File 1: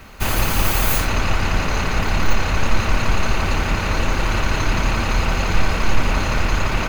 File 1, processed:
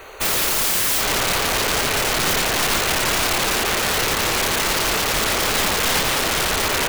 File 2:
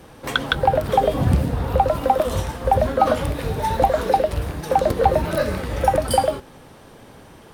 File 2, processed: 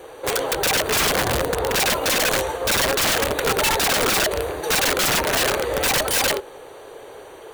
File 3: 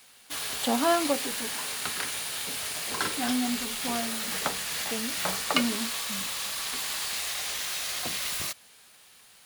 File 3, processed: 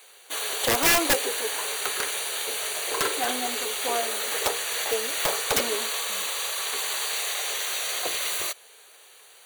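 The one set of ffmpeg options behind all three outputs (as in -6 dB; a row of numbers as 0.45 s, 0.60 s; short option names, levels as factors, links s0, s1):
-af "asuperstop=centerf=5200:order=20:qfactor=5.7,lowshelf=f=300:t=q:w=3:g=-11.5,aeval=exprs='(mod(7.94*val(0)+1,2)-1)/7.94':c=same,volume=1.5"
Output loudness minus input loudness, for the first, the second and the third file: +3.0 LU, +1.0 LU, +3.5 LU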